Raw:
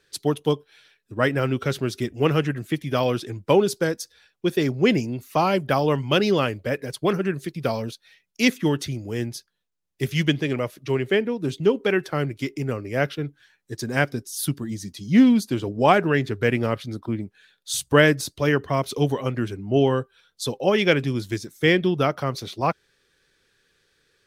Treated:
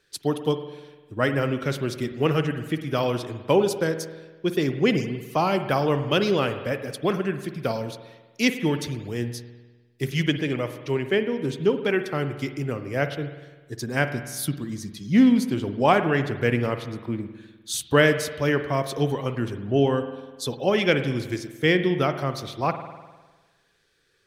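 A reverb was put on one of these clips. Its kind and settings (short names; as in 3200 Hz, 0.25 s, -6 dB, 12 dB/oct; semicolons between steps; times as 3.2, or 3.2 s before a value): spring tank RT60 1.3 s, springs 50 ms, chirp 65 ms, DRR 9 dB; gain -2 dB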